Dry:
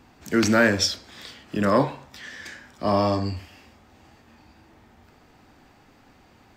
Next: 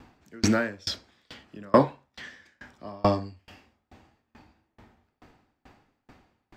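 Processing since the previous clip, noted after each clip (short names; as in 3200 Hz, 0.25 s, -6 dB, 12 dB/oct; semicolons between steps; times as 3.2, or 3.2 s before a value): high shelf 5300 Hz -8 dB; dB-ramp tremolo decaying 2.3 Hz, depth 34 dB; gain +4.5 dB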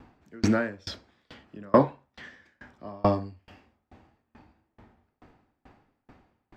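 high shelf 3000 Hz -10.5 dB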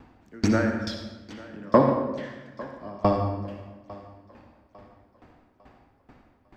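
thinning echo 0.851 s, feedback 40%, high-pass 190 Hz, level -19.5 dB; reverb RT60 1.2 s, pre-delay 57 ms, DRR 4.5 dB; gain +1 dB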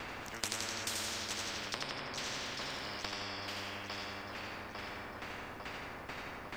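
compressor, threshold -30 dBFS, peak gain reduction 17 dB; split-band echo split 340 Hz, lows 0.173 s, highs 84 ms, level -4 dB; spectral compressor 10:1; gain -1.5 dB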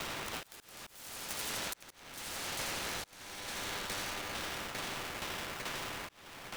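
self-modulated delay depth 0.44 ms; auto swell 0.674 s; polarity switched at an audio rate 1100 Hz; gain +4.5 dB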